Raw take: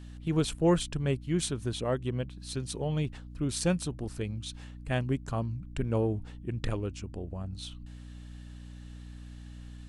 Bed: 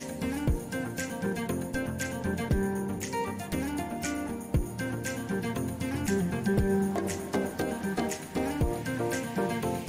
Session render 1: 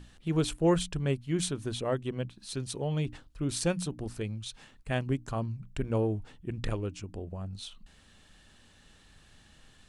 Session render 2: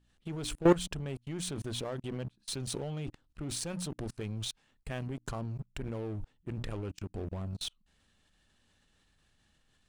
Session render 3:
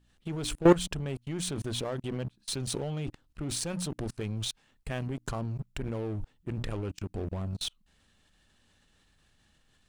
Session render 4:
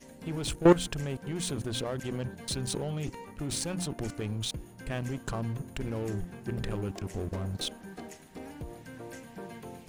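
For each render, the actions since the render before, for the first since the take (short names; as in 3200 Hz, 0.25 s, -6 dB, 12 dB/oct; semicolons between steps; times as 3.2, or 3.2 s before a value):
notches 60/120/180/240/300 Hz
level quantiser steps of 22 dB; sample leveller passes 2
gain +3.5 dB
add bed -13.5 dB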